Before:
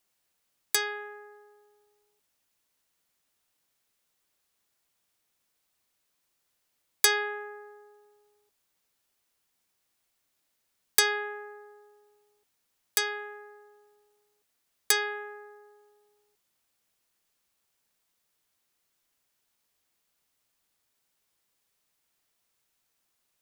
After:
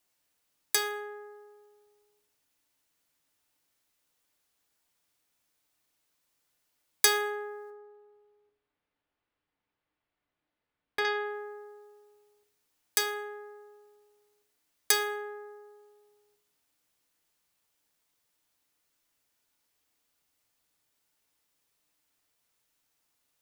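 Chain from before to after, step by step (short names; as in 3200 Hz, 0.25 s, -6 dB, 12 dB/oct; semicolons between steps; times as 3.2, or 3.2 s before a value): 7.7–11.05 air absorption 410 m; FDN reverb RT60 0.61 s, low-frequency decay 1.1×, high-frequency decay 0.7×, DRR 5.5 dB; gain -1 dB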